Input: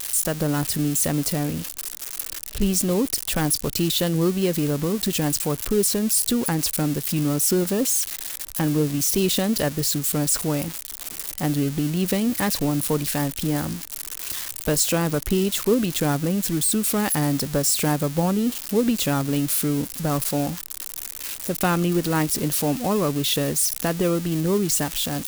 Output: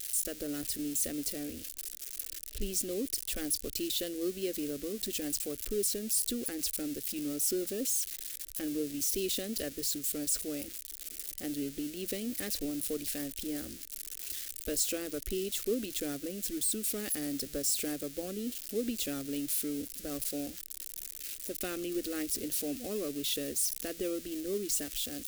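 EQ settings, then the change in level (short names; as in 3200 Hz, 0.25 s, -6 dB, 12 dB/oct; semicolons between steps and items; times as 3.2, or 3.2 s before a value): bell 880 Hz -4 dB 2.3 oct; fixed phaser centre 390 Hz, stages 4; -9.0 dB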